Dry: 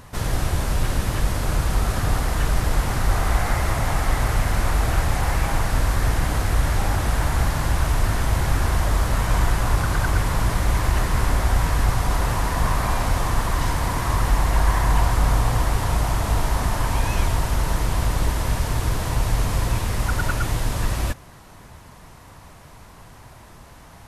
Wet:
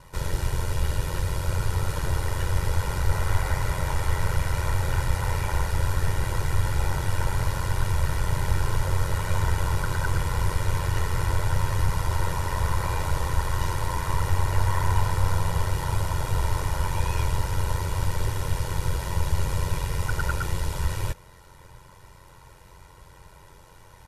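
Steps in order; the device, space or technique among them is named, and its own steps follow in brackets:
ring-modulated robot voice (ring modulation 45 Hz; comb filter 2.1 ms, depth 69%)
level −4 dB

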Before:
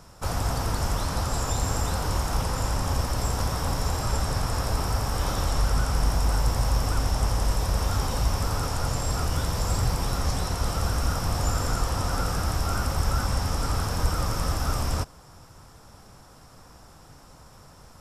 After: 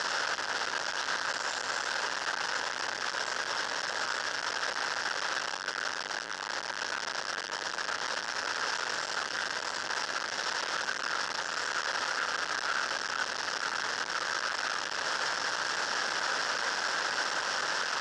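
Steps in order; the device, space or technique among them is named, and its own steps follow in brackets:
home computer beeper (sign of each sample alone; loudspeaker in its box 730–5,400 Hz, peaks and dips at 740 Hz −6 dB, 1,100 Hz −5 dB, 1,600 Hz +8 dB, 2,300 Hz −8 dB, 3,800 Hz −4 dB)

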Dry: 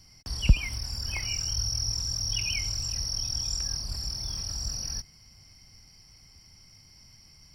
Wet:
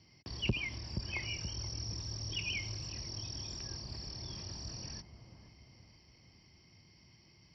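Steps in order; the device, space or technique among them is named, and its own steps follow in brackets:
analogue delay pedal into a guitar amplifier (bucket-brigade delay 477 ms, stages 4,096, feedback 49%, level −10 dB; tube saturation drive 19 dB, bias 0.3; loudspeaker in its box 100–4,200 Hz, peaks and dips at 350 Hz +7 dB, 780 Hz −3 dB, 1,400 Hz −9 dB)
level −1.5 dB

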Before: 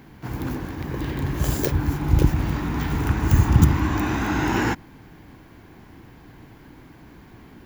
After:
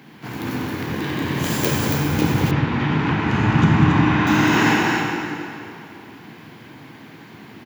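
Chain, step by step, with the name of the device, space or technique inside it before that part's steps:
stadium PA (high-pass filter 120 Hz 24 dB per octave; parametric band 3,000 Hz +6.5 dB 1.8 octaves; loudspeakers that aren't time-aligned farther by 66 metres −9 dB, 95 metres −5 dB; convolution reverb RT60 2.7 s, pre-delay 11 ms, DRR −1.5 dB)
0:02.51–0:04.27: low-pass filter 3,200 Hz 12 dB per octave

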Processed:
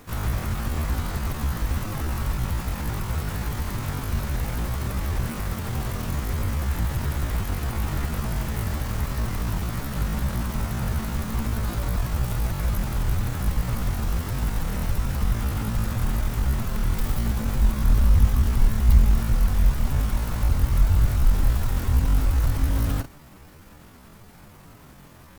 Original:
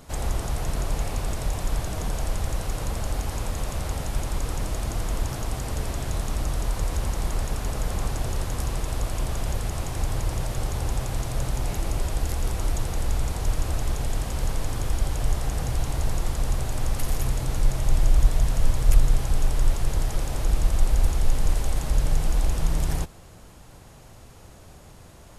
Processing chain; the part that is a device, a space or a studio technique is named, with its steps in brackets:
chipmunk voice (pitch shifter +9.5 semitones)

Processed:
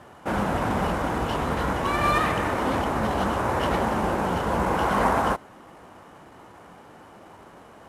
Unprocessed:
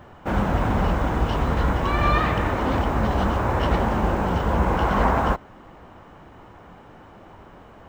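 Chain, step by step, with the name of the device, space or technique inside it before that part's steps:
early wireless headset (high-pass filter 190 Hz 6 dB per octave; variable-slope delta modulation 64 kbit/s)

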